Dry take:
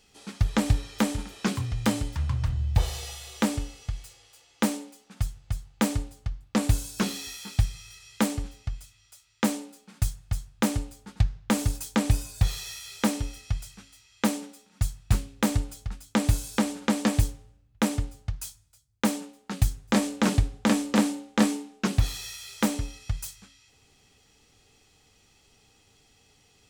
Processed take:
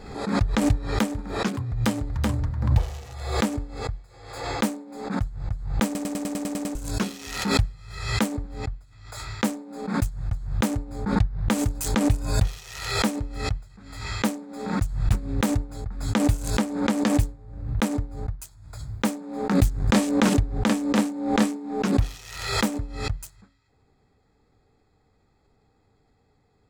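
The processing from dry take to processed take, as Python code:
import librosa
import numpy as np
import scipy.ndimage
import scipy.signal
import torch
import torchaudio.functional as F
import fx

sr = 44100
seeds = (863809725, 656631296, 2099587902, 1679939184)

y = fx.echo_throw(x, sr, start_s=1.71, length_s=0.71, ms=380, feedback_pct=15, wet_db=-2.5)
y = fx.leveller(y, sr, passes=1, at=(19.55, 20.34))
y = fx.edit(y, sr, fx.stutter_over(start_s=5.85, slice_s=0.1, count=9), tone=tone)
y = fx.wiener(y, sr, points=15)
y = fx.pre_swell(y, sr, db_per_s=62.0)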